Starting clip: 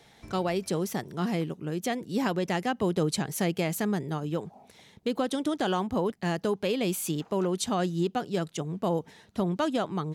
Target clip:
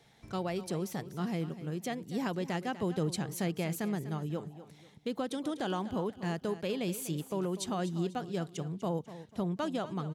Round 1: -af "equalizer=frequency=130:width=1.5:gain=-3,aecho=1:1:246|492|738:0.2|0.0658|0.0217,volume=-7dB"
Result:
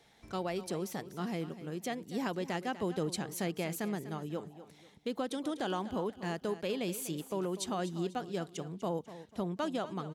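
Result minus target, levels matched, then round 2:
125 Hz band −3.5 dB
-af "equalizer=frequency=130:width=1.5:gain=5,aecho=1:1:246|492|738:0.2|0.0658|0.0217,volume=-7dB"

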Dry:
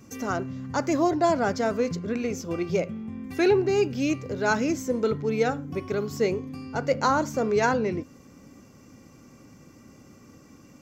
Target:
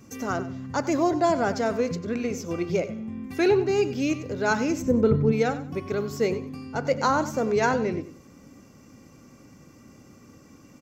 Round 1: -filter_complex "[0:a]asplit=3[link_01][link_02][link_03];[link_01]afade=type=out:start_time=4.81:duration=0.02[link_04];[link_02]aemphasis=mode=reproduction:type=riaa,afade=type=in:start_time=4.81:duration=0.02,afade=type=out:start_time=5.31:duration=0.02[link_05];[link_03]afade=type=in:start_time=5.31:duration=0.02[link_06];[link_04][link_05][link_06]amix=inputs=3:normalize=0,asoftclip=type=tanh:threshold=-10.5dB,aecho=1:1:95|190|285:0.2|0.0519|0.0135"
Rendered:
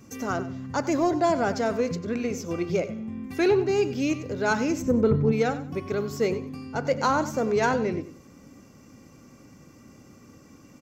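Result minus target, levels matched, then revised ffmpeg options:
soft clipping: distortion +20 dB
-filter_complex "[0:a]asplit=3[link_01][link_02][link_03];[link_01]afade=type=out:start_time=4.81:duration=0.02[link_04];[link_02]aemphasis=mode=reproduction:type=riaa,afade=type=in:start_time=4.81:duration=0.02,afade=type=out:start_time=5.31:duration=0.02[link_05];[link_03]afade=type=in:start_time=5.31:duration=0.02[link_06];[link_04][link_05][link_06]amix=inputs=3:normalize=0,asoftclip=type=tanh:threshold=0dB,aecho=1:1:95|190|285:0.2|0.0519|0.0135"

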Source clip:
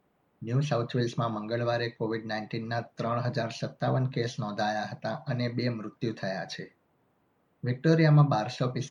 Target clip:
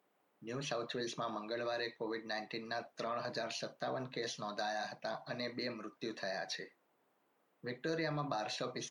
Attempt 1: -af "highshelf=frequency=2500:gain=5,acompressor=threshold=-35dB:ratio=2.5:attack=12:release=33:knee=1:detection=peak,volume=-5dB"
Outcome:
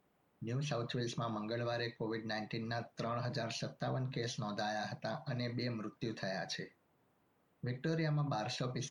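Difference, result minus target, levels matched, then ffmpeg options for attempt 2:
250 Hz band +2.5 dB
-af "highpass=320,highshelf=frequency=2500:gain=5,acompressor=threshold=-35dB:ratio=2.5:attack=12:release=33:knee=1:detection=peak,volume=-5dB"

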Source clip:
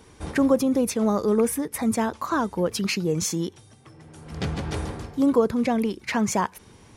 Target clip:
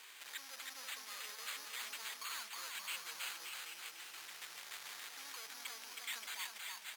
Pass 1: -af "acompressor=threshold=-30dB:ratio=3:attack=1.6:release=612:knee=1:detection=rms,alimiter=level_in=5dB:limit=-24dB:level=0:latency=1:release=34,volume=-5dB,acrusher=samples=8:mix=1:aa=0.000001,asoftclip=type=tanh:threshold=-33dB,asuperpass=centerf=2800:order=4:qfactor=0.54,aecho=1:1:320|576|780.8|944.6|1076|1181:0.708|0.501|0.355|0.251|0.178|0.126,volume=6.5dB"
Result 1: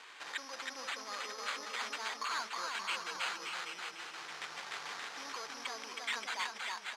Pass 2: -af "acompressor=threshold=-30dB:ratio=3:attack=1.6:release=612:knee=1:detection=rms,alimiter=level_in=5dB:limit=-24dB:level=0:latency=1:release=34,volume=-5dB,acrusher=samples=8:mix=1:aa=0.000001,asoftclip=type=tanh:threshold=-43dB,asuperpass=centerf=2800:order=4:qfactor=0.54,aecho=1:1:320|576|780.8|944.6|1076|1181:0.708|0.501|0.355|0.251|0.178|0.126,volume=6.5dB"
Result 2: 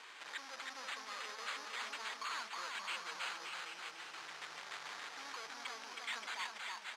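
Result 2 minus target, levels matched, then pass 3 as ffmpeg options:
8,000 Hz band −6.0 dB
-af "acompressor=threshold=-30dB:ratio=3:attack=1.6:release=612:knee=1:detection=rms,alimiter=level_in=5dB:limit=-24dB:level=0:latency=1:release=34,volume=-5dB,acrusher=samples=8:mix=1:aa=0.000001,asoftclip=type=tanh:threshold=-43dB,asuperpass=centerf=8800:order=4:qfactor=0.54,aecho=1:1:320|576|780.8|944.6|1076|1181:0.708|0.501|0.355|0.251|0.178|0.126,volume=6.5dB"

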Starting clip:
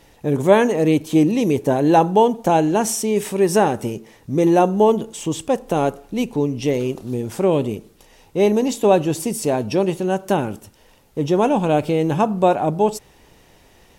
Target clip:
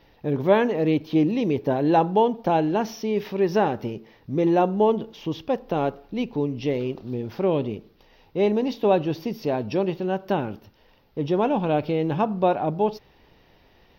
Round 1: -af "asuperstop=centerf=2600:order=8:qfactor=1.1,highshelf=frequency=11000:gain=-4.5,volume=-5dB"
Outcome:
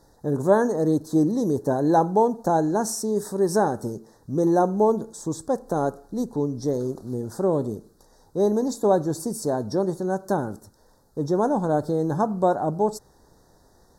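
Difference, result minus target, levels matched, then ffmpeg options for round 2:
8,000 Hz band +15.5 dB
-af "asuperstop=centerf=8900:order=8:qfactor=1.1,highshelf=frequency=11000:gain=-4.5,volume=-5dB"

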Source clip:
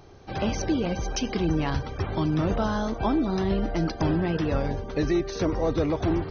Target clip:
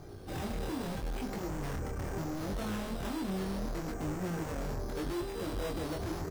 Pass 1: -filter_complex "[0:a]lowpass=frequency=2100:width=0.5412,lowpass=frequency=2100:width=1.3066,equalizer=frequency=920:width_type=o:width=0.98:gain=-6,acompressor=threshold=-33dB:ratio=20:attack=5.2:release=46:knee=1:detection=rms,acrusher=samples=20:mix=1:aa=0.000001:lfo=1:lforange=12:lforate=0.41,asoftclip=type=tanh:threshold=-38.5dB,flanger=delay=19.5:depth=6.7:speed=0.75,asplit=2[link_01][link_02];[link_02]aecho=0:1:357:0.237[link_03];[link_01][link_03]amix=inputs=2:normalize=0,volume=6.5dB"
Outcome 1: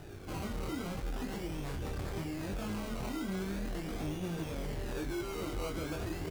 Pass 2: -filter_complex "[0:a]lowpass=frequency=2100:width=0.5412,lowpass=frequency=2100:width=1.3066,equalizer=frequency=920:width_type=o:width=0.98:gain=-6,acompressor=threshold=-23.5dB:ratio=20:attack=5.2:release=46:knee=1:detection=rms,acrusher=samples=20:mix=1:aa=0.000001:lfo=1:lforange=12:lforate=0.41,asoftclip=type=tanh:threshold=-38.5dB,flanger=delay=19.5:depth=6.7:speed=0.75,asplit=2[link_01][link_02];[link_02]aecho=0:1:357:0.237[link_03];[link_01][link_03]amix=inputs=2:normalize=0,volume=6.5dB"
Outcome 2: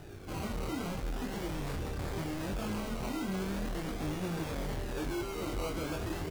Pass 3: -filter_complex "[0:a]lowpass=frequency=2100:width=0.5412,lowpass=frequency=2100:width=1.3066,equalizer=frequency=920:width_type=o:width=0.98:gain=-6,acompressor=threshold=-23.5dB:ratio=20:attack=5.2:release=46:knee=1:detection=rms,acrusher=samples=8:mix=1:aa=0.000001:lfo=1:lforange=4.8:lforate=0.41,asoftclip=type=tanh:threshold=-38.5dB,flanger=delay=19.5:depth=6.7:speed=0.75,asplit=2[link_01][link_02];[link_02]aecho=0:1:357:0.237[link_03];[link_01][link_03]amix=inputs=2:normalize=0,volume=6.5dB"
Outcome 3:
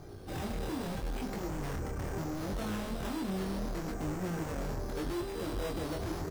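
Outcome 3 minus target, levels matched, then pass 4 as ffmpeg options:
echo-to-direct +8 dB
-filter_complex "[0:a]lowpass=frequency=2100:width=0.5412,lowpass=frequency=2100:width=1.3066,equalizer=frequency=920:width_type=o:width=0.98:gain=-6,acompressor=threshold=-23.5dB:ratio=20:attack=5.2:release=46:knee=1:detection=rms,acrusher=samples=8:mix=1:aa=0.000001:lfo=1:lforange=4.8:lforate=0.41,asoftclip=type=tanh:threshold=-38.5dB,flanger=delay=19.5:depth=6.7:speed=0.75,asplit=2[link_01][link_02];[link_02]aecho=0:1:357:0.0944[link_03];[link_01][link_03]amix=inputs=2:normalize=0,volume=6.5dB"

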